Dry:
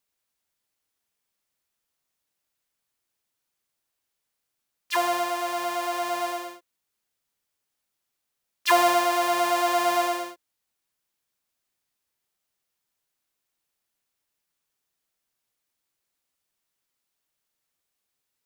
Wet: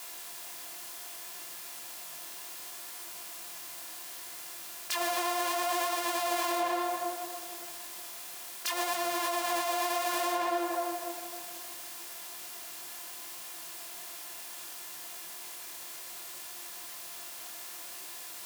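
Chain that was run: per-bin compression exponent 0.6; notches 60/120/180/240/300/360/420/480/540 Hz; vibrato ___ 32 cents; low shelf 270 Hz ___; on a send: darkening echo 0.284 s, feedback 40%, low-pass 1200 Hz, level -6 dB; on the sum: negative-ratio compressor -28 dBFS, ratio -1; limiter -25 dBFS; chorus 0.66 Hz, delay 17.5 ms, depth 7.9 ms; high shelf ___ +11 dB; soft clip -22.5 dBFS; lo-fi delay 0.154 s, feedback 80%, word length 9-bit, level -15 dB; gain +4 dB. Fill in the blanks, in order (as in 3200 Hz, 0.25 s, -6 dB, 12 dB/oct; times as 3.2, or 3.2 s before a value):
12 Hz, +4.5 dB, 4300 Hz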